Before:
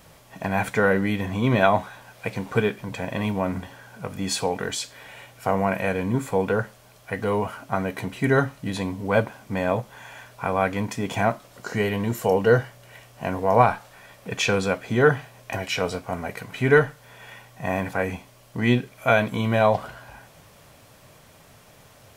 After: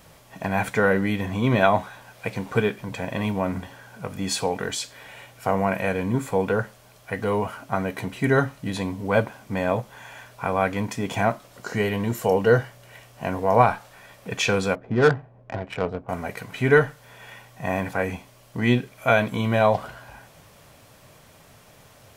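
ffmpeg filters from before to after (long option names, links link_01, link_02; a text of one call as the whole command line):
ffmpeg -i in.wav -filter_complex "[0:a]asettb=1/sr,asplit=3[link_01][link_02][link_03];[link_01]atrim=end=14.754[link_04];[link_02]atrim=start=14.75:end=16.09,asetpts=PTS-STARTPTS,afade=type=in:duration=0.004:curve=qsin,afade=type=out:start_time=1.336:duration=0.004:curve=qsin,adynamicsmooth=sensitivity=1:basefreq=650[link_05];[link_03]atrim=start=16.086[link_06];[link_04][link_05]acrossfade=duration=0.004:curve1=hsin:curve2=qsin[link_07];[link_07][link_06]acrossfade=duration=0.004:curve1=qsin:curve2=hsin" out.wav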